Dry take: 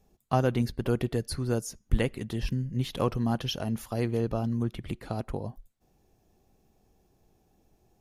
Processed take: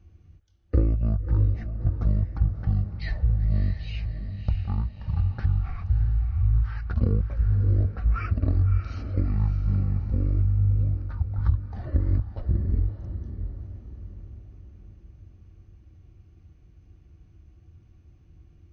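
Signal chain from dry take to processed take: low-pass 2.3 kHz 6 dB/octave; resonant low shelf 290 Hz +10 dB, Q 1.5; compression 10:1, threshold -26 dBFS, peak gain reduction 19 dB; high-pass 110 Hz; speed mistake 78 rpm record played at 33 rpm; band-stop 1 kHz, Q 12; echo that smears into a reverb 630 ms, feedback 49%, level -9 dB; trim +8.5 dB

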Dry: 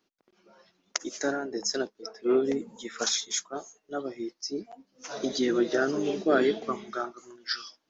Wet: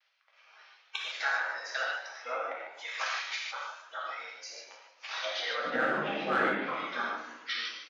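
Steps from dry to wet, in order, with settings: low-pass that closes with the level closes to 1.2 kHz, closed at -22 dBFS; spectral gate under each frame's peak -10 dB weak; low-pass 5.2 kHz 24 dB/octave; frequency-shifting echo 153 ms, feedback 32%, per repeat +69 Hz, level -11 dB; vibrato 0.52 Hz 30 cents; high-pass 600 Hz 24 dB/octave, from 5.65 s 190 Hz; overload inside the chain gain 27 dB; peaking EQ 2.2 kHz +10 dB 1.4 oct; gated-style reverb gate 170 ms flat, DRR -2.5 dB

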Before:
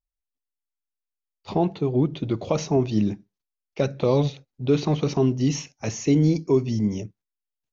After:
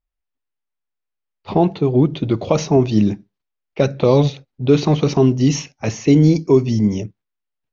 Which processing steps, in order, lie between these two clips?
level-controlled noise filter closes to 2.8 kHz, open at -15 dBFS; trim +7 dB

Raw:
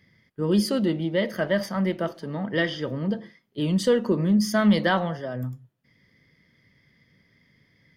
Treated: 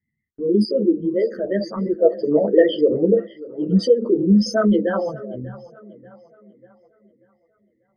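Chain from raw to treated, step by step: resonances exaggerated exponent 3; gate -49 dBFS, range -18 dB; 2.02–3.19 s: peaking EQ 590 Hz +13.5 dB 1.9 oct; in parallel at -2 dB: peak limiter -14.5 dBFS, peak gain reduction 11 dB; on the sum: rotary cabinet horn 8 Hz; dynamic bell 400 Hz, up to +6 dB, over -28 dBFS, Q 1; on a send: tape echo 589 ms, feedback 47%, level -18.5 dB, low-pass 3.9 kHz; on the sum: three-phase chorus

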